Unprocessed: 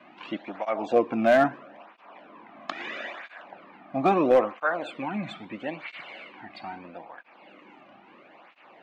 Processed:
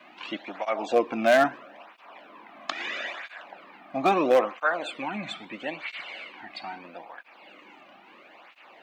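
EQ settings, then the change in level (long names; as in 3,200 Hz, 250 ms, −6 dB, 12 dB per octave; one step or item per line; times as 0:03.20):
high-pass filter 270 Hz 6 dB per octave
high-shelf EQ 3,100 Hz +11 dB
0.0 dB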